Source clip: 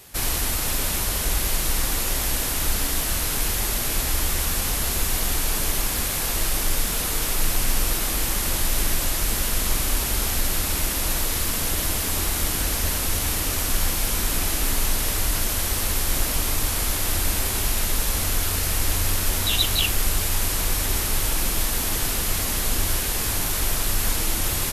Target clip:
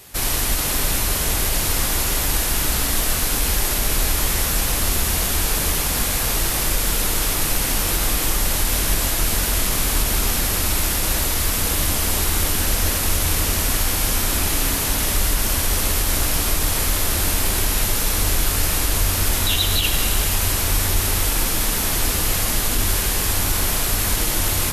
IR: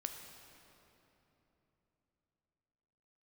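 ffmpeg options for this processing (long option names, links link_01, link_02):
-filter_complex "[1:a]atrim=start_sample=2205[link_01];[0:a][link_01]afir=irnorm=-1:irlink=0,alimiter=level_in=12.5dB:limit=-1dB:release=50:level=0:latency=1,volume=-7dB"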